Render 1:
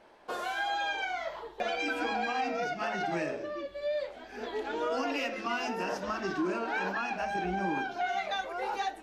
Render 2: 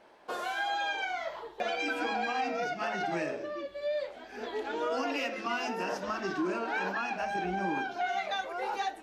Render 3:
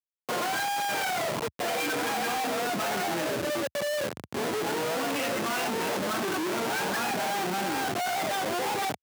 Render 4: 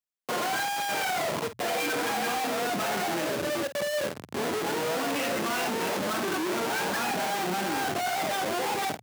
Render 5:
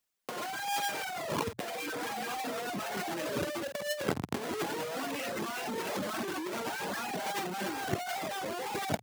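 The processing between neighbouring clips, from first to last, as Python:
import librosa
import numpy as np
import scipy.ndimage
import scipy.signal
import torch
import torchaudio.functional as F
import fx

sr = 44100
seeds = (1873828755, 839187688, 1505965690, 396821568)

y1 = fx.low_shelf(x, sr, hz=77.0, db=-9.5)
y2 = fx.quant_dither(y1, sr, seeds[0], bits=10, dither='none')
y2 = fx.schmitt(y2, sr, flips_db=-39.0)
y2 = scipy.signal.sosfilt(scipy.signal.bessel(8, 160.0, 'highpass', norm='mag', fs=sr, output='sos'), y2)
y2 = y2 * 10.0 ** (5.0 / 20.0)
y3 = fx.hum_notches(y2, sr, base_hz=60, count=2)
y3 = fx.doubler(y3, sr, ms=50.0, db=-11.5)
y4 = fx.dereverb_blind(y3, sr, rt60_s=0.75)
y4 = fx.over_compress(y4, sr, threshold_db=-36.0, ratio=-0.5)
y4 = y4 * 10.0 ** (3.0 / 20.0)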